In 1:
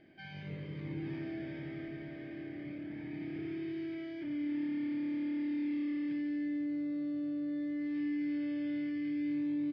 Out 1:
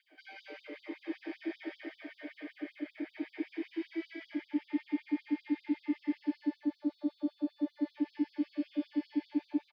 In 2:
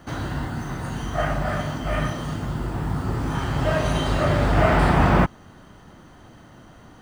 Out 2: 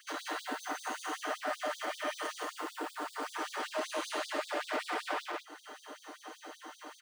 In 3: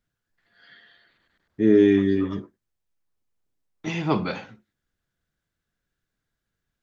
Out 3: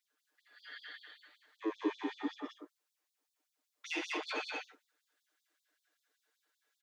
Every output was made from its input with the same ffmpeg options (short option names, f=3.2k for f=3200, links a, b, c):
-filter_complex "[0:a]aecho=1:1:6.6:0.95,acompressor=threshold=-29dB:ratio=2,asoftclip=type=tanh:threshold=-24.5dB,acrossover=split=240|3000[a][b][c];[b]acompressor=threshold=-32dB:ratio=6[d];[a][d][c]amix=inputs=3:normalize=0,asplit=2[e][f];[f]aecho=0:1:122.4|180.8:0.355|0.794[g];[e][g]amix=inputs=2:normalize=0,afftfilt=real='re*gte(b*sr/1024,250*pow(3500/250,0.5+0.5*sin(2*PI*5.2*pts/sr)))':imag='im*gte(b*sr/1024,250*pow(3500/250,0.5+0.5*sin(2*PI*5.2*pts/sr)))':win_size=1024:overlap=0.75"